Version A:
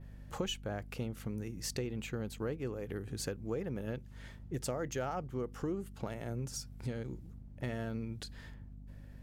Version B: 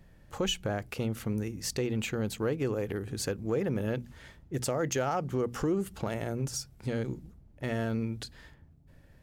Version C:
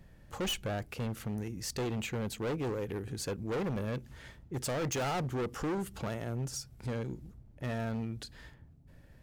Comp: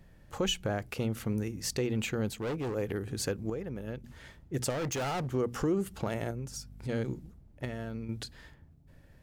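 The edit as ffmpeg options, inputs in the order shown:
-filter_complex "[2:a]asplit=2[a][b];[0:a]asplit=3[c][d][e];[1:a]asplit=6[f][g][h][i][j][k];[f]atrim=end=2.302[l];[a]atrim=start=2.298:end=2.752[m];[g]atrim=start=2.748:end=3.502[n];[c]atrim=start=3.498:end=4.042[o];[h]atrim=start=4.038:end=4.702[p];[b]atrim=start=4.698:end=5.342[q];[i]atrim=start=5.338:end=6.312[r];[d]atrim=start=6.308:end=6.892[s];[j]atrim=start=6.888:end=7.652[t];[e]atrim=start=7.648:end=8.092[u];[k]atrim=start=8.088[v];[l][m]acrossfade=d=0.004:c1=hsin:c2=hsin[w];[w][n]acrossfade=d=0.004:c1=hsin:c2=hsin[x];[x][o]acrossfade=d=0.004:c1=hsin:c2=hsin[y];[y][p]acrossfade=d=0.004:c1=hsin:c2=hsin[z];[z][q]acrossfade=d=0.004:c1=hsin:c2=hsin[aa];[aa][r]acrossfade=d=0.004:c1=hsin:c2=hsin[ab];[ab][s]acrossfade=d=0.004:c1=hsin:c2=hsin[ac];[ac][t]acrossfade=d=0.004:c1=hsin:c2=hsin[ad];[ad][u]acrossfade=d=0.004:c1=hsin:c2=hsin[ae];[ae][v]acrossfade=d=0.004:c1=hsin:c2=hsin"

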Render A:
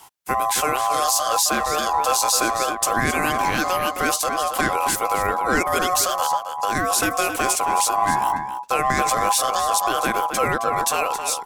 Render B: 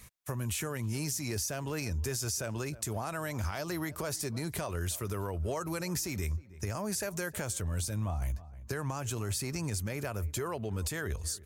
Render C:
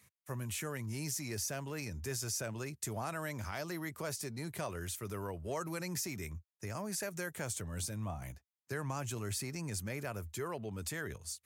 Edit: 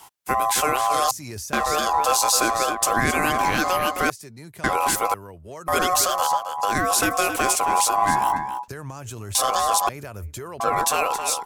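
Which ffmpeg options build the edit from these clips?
-filter_complex "[1:a]asplit=3[a][b][c];[2:a]asplit=2[d][e];[0:a]asplit=6[f][g][h][i][j][k];[f]atrim=end=1.112[l];[a]atrim=start=1.108:end=1.532[m];[g]atrim=start=1.528:end=4.102[n];[d]atrim=start=4.098:end=4.642[o];[h]atrim=start=4.638:end=5.142[p];[e]atrim=start=5.138:end=5.682[q];[i]atrim=start=5.678:end=8.682[r];[b]atrim=start=8.678:end=9.352[s];[j]atrim=start=9.348:end=9.892[t];[c]atrim=start=9.888:end=10.602[u];[k]atrim=start=10.598[v];[l][m]acrossfade=d=0.004:c1=hsin:c2=hsin[w];[w][n]acrossfade=d=0.004:c1=hsin:c2=hsin[x];[x][o]acrossfade=d=0.004:c1=hsin:c2=hsin[y];[y][p]acrossfade=d=0.004:c1=hsin:c2=hsin[z];[z][q]acrossfade=d=0.004:c1=hsin:c2=hsin[aa];[aa][r]acrossfade=d=0.004:c1=hsin:c2=hsin[ab];[ab][s]acrossfade=d=0.004:c1=hsin:c2=hsin[ac];[ac][t]acrossfade=d=0.004:c1=hsin:c2=hsin[ad];[ad][u]acrossfade=d=0.004:c1=hsin:c2=hsin[ae];[ae][v]acrossfade=d=0.004:c1=hsin:c2=hsin"

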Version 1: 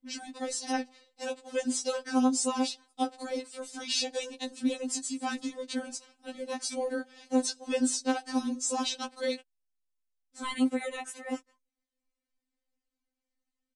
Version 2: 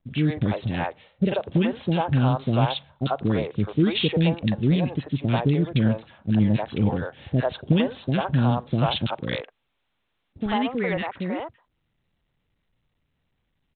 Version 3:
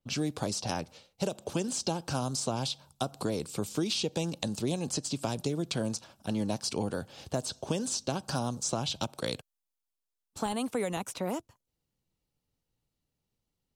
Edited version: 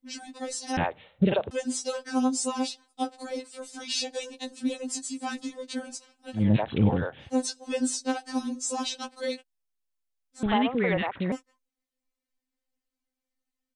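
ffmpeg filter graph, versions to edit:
-filter_complex "[1:a]asplit=3[a][b][c];[0:a]asplit=4[d][e][f][g];[d]atrim=end=0.772[h];[a]atrim=start=0.768:end=1.512[i];[e]atrim=start=1.508:end=6.49[j];[b]atrim=start=6.33:end=7.34[k];[f]atrim=start=7.18:end=10.432[l];[c]atrim=start=10.428:end=11.322[m];[g]atrim=start=11.318[n];[h][i]acrossfade=d=0.004:c1=hsin:c2=hsin[o];[o][j]acrossfade=d=0.004:c1=hsin:c2=hsin[p];[p][k]acrossfade=d=0.16:c1=tri:c2=tri[q];[q][l]acrossfade=d=0.16:c1=tri:c2=tri[r];[r][m]acrossfade=d=0.004:c1=hsin:c2=hsin[s];[s][n]acrossfade=d=0.004:c1=hsin:c2=hsin"

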